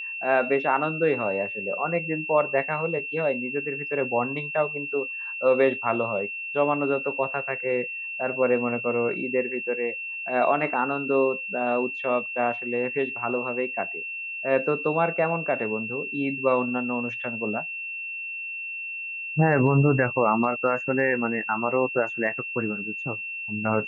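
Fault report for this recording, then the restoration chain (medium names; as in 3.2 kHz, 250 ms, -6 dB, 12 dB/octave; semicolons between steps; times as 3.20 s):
whine 2.7 kHz -31 dBFS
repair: band-stop 2.7 kHz, Q 30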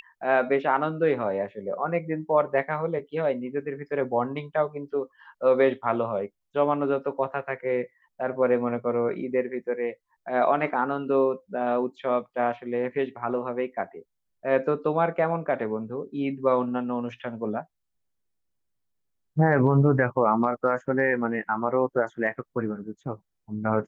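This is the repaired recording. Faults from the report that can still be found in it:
nothing left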